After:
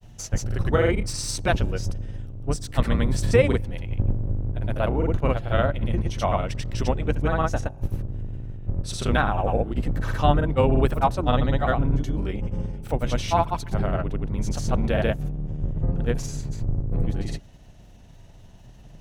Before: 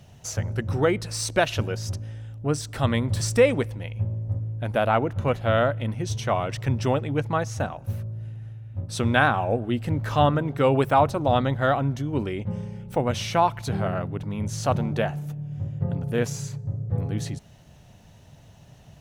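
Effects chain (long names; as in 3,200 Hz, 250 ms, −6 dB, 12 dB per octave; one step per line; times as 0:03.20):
sub-octave generator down 2 octaves, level +4 dB
granular cloud, spray 100 ms, pitch spread up and down by 0 semitones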